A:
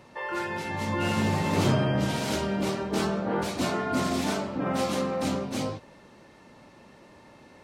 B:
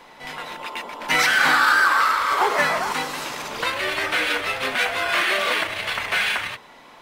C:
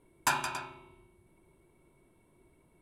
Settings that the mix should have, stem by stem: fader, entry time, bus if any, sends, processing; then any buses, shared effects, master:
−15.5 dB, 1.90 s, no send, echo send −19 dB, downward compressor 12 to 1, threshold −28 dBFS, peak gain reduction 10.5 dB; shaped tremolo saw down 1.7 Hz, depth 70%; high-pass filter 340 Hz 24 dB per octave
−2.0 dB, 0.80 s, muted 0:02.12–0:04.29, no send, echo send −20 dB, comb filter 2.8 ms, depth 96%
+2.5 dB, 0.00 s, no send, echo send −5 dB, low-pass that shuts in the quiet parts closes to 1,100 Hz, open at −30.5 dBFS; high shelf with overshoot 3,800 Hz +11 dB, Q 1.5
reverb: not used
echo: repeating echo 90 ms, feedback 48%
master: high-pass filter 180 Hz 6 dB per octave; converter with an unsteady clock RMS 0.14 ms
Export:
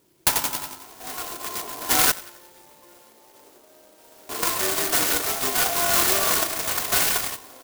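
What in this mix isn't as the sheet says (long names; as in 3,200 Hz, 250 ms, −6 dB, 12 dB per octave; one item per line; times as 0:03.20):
stem A: missing shaped tremolo saw down 1.7 Hz, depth 70%
stem C: missing low-pass that shuts in the quiet parts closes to 1,100 Hz, open at −30.5 dBFS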